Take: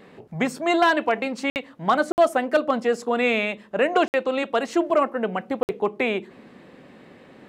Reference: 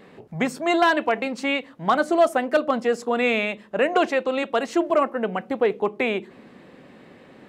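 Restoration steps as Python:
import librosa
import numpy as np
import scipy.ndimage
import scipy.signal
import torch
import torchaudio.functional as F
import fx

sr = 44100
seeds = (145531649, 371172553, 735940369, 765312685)

y = fx.fix_interpolate(x, sr, at_s=(1.5, 2.12, 4.08, 5.63), length_ms=59.0)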